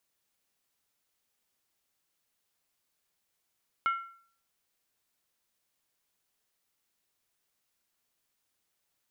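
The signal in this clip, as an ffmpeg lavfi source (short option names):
-f lavfi -i "aevalsrc='0.075*pow(10,-3*t/0.53)*sin(2*PI*1360*t)+0.0251*pow(10,-3*t/0.42)*sin(2*PI*2167.8*t)+0.00841*pow(10,-3*t/0.363)*sin(2*PI*2905*t)+0.00282*pow(10,-3*t/0.35)*sin(2*PI*3122.6*t)+0.000944*pow(10,-3*t/0.325)*sin(2*PI*3608.1*t)':d=0.63:s=44100"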